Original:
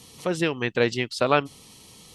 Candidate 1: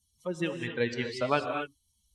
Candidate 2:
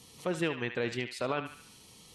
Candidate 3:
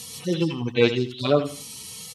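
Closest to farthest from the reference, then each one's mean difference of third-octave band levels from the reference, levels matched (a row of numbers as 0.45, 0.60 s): 2, 3, 1; 4.0, 6.5, 10.5 dB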